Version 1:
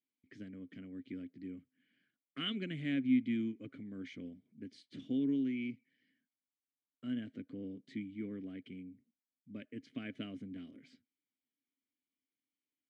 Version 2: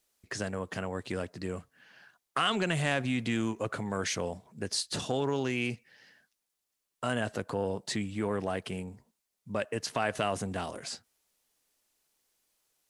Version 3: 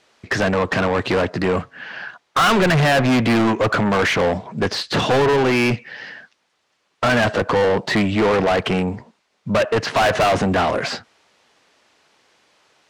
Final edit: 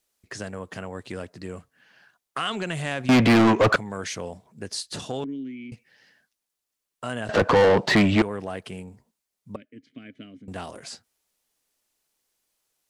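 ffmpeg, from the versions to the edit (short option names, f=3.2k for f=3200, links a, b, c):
-filter_complex "[2:a]asplit=2[a][b];[0:a]asplit=2[c][d];[1:a]asplit=5[e][f][g][h][i];[e]atrim=end=3.092[j];[a]atrim=start=3.088:end=3.762[k];[f]atrim=start=3.758:end=5.242[l];[c]atrim=start=5.238:end=5.722[m];[g]atrim=start=5.718:end=7.292[n];[b]atrim=start=7.288:end=8.222[o];[h]atrim=start=8.218:end=9.562[p];[d]atrim=start=9.558:end=10.482[q];[i]atrim=start=10.478[r];[j][k]acrossfade=d=0.004:c1=hsin:c2=hsin[s];[s][l]acrossfade=d=0.004:c1=hsin:c2=hsin[t];[t][m]acrossfade=d=0.004:c1=hsin:c2=hsin[u];[u][n]acrossfade=d=0.004:c1=hsin:c2=hsin[v];[v][o]acrossfade=d=0.004:c1=hsin:c2=hsin[w];[w][p]acrossfade=d=0.004:c1=hsin:c2=hsin[x];[x][q]acrossfade=d=0.004:c1=hsin:c2=hsin[y];[y][r]acrossfade=d=0.004:c1=hsin:c2=hsin"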